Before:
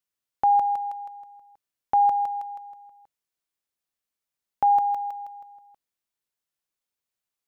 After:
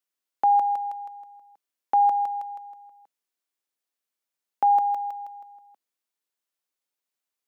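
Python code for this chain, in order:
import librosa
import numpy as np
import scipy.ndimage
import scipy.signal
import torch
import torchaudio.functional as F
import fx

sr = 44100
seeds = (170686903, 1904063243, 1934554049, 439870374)

y = scipy.signal.sosfilt(scipy.signal.butter(4, 220.0, 'highpass', fs=sr, output='sos'), x)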